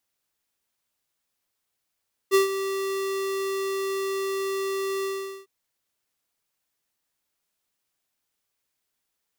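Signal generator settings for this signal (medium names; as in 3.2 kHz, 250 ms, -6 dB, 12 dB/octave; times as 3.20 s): ADSR square 389 Hz, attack 37 ms, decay 127 ms, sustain -11.5 dB, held 2.73 s, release 423 ms -16.5 dBFS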